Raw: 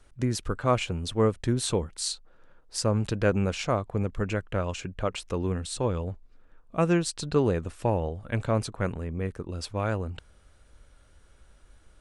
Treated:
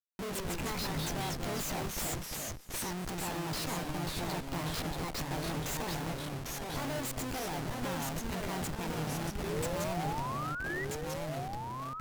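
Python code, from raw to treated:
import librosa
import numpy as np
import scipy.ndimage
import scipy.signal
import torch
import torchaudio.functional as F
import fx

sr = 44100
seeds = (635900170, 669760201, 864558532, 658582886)

y = fx.pitch_heads(x, sr, semitones=9.5)
y = fx.low_shelf(y, sr, hz=74.0, db=-11.5)
y = fx.schmitt(y, sr, flips_db=-39.0)
y = fx.spec_paint(y, sr, seeds[0], shape='rise', start_s=9.43, length_s=1.42, low_hz=380.0, high_hz=2000.0, level_db=-32.0)
y = y + 10.0 ** (-19.0 / 20.0) * np.pad(y, (int(237 * sr / 1000.0), 0))[:len(y)]
y = fx.echo_pitch(y, sr, ms=106, semitones=-2, count=2, db_per_echo=-3.0)
y = y * 10.0 ** (-6.5 / 20.0)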